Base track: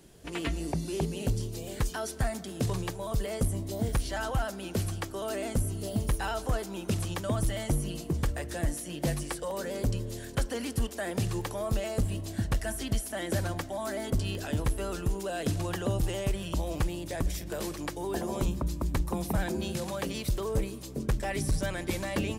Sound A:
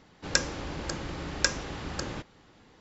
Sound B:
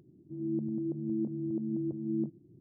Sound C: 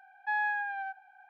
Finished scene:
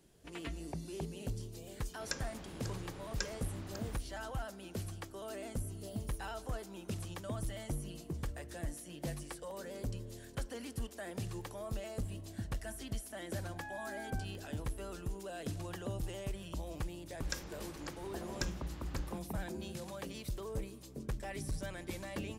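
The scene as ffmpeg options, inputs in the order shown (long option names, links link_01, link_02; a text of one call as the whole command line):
ffmpeg -i bed.wav -i cue0.wav -i cue1.wav -i cue2.wav -filter_complex "[1:a]asplit=2[link_01][link_02];[0:a]volume=-10.5dB[link_03];[3:a]acompressor=threshold=-35dB:ratio=6:attack=3.2:release=140:knee=1:detection=peak[link_04];[link_01]atrim=end=2.8,asetpts=PTS-STARTPTS,volume=-14dB,afade=type=in:duration=0.004:curve=hsin,afade=type=out:start_time=2.796:duration=0.004:curve=hsin,adelay=1760[link_05];[link_04]atrim=end=1.29,asetpts=PTS-STARTPTS,volume=-9dB,afade=type=in:duration=0.004:curve=hsin,afade=type=out:start_time=1.286:duration=0.004:curve=hsin,adelay=587412S[link_06];[link_02]atrim=end=2.8,asetpts=PTS-STARTPTS,volume=-15dB,afade=type=in:duration=0.004:curve=hsin,afade=type=out:start_time=2.796:duration=0.004:curve=hsin,adelay=16970[link_07];[link_03][link_05][link_06][link_07]amix=inputs=4:normalize=0" out.wav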